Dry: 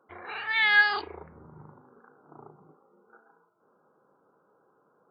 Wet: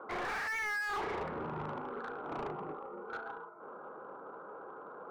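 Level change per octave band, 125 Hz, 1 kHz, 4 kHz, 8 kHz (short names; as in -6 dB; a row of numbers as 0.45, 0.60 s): +5.0 dB, -2.5 dB, -16.5 dB, n/a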